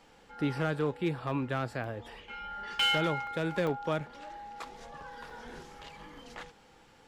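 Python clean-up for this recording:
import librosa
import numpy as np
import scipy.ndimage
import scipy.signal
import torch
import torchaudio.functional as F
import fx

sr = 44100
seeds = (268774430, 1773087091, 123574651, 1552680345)

y = fx.fix_declip(x, sr, threshold_db=-21.5)
y = fx.fix_interpolate(y, sr, at_s=(1.84, 3.27, 3.67, 4.8, 5.3), length_ms=2.0)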